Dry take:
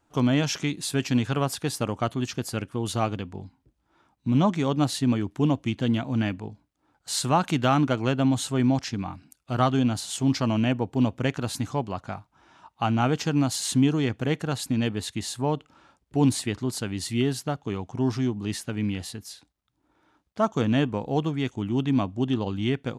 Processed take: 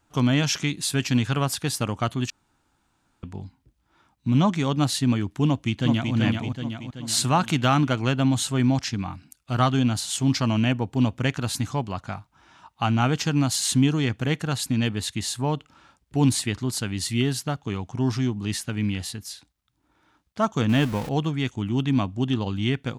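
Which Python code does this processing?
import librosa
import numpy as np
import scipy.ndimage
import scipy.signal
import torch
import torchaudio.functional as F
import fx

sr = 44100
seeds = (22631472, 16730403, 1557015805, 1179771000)

y = fx.echo_throw(x, sr, start_s=5.47, length_s=0.67, ms=380, feedback_pct=55, wet_db=-3.5)
y = fx.zero_step(y, sr, step_db=-33.5, at=(20.69, 21.09))
y = fx.edit(y, sr, fx.room_tone_fill(start_s=2.3, length_s=0.93), tone=tone)
y = fx.peak_eq(y, sr, hz=470.0, db=-6.5, octaves=2.2)
y = y * 10.0 ** (4.5 / 20.0)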